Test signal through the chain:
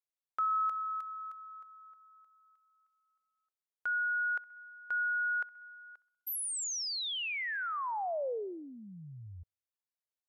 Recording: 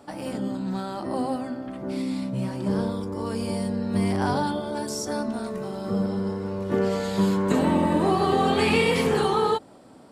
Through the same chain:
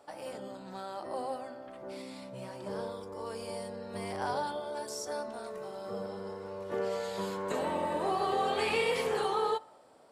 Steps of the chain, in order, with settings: resonant low shelf 360 Hz -9.5 dB, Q 1.5; on a send: band-limited delay 64 ms, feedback 58%, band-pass 1300 Hz, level -21 dB; on the sum: gain -8 dB

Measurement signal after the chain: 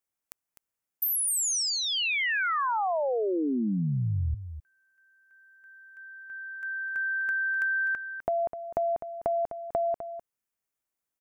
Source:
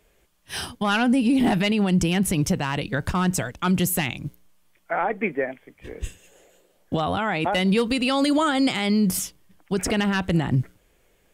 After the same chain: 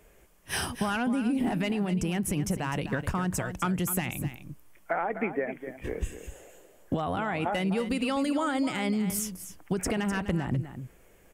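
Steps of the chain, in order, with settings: bell 3900 Hz -8.5 dB 0.89 oct; compressor 6:1, threshold -31 dBFS; on a send: echo 0.253 s -11 dB; on the sum: gain +4.5 dB

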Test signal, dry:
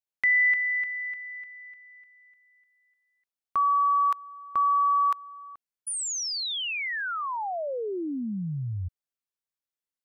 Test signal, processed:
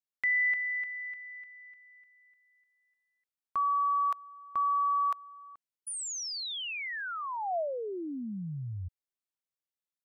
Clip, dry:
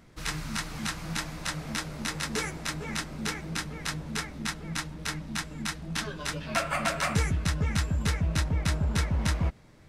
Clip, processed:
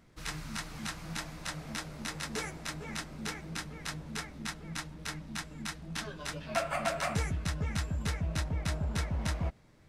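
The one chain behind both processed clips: dynamic EQ 680 Hz, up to +7 dB, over -47 dBFS, Q 2.9; gain -6 dB

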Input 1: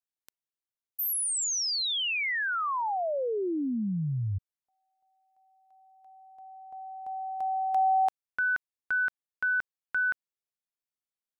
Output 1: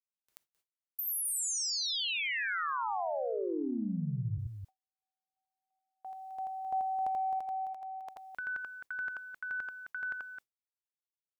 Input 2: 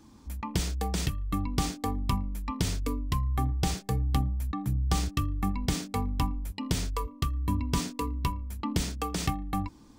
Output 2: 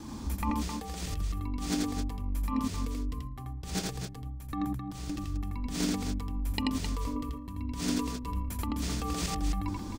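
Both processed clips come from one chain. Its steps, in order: negative-ratio compressor -39 dBFS, ratio -1; loudspeakers at several distances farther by 29 m -2 dB, 90 m -7 dB; gate with hold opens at -47 dBFS, closes at -51 dBFS, hold 19 ms, range -35 dB; gain +3 dB

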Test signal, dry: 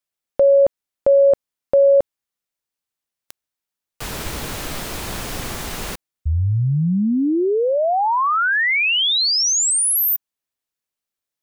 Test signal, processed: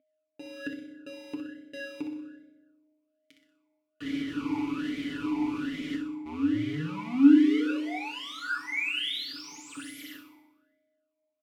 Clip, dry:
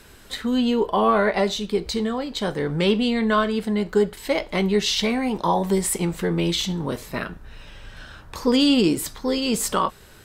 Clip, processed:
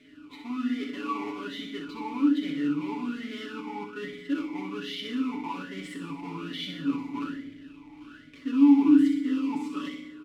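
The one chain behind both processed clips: half-waves squared off; reverse; compressor, threshold -23 dBFS; reverse; notch 1600 Hz, Q 20; comb 7 ms, depth 66%; on a send: flutter echo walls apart 10.7 m, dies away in 0.57 s; on the sum: FDN reverb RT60 1.3 s, low-frequency decay 1×, high-frequency decay 0.65×, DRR 3 dB; whine 620 Hz -46 dBFS; vowel sweep i-u 1.2 Hz

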